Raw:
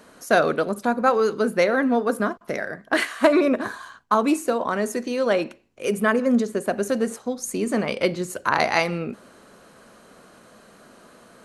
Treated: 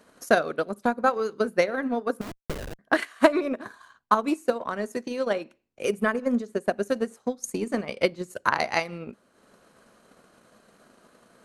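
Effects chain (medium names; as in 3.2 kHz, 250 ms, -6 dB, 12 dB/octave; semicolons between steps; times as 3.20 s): 2.21–2.79 s: Schmitt trigger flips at -27 dBFS; transient shaper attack +9 dB, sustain -7 dB; trim -8 dB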